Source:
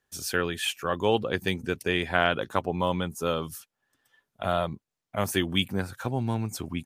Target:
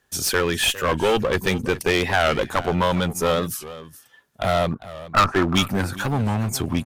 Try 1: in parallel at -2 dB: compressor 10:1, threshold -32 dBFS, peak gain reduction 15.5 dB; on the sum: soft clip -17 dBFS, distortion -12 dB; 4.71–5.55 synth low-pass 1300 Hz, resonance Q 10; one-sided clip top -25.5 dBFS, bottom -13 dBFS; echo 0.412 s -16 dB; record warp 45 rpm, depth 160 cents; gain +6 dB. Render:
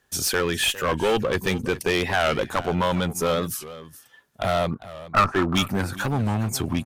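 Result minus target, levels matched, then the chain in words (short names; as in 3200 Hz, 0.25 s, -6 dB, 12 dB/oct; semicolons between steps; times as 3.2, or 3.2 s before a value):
compressor: peak gain reduction +8.5 dB; soft clip: distortion +6 dB
in parallel at -2 dB: compressor 10:1, threshold -22.5 dBFS, peak gain reduction 6.5 dB; on the sum: soft clip -9.5 dBFS, distortion -18 dB; 4.71–5.55 synth low-pass 1300 Hz, resonance Q 10; one-sided clip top -25.5 dBFS, bottom -13 dBFS; echo 0.412 s -16 dB; record warp 45 rpm, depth 160 cents; gain +6 dB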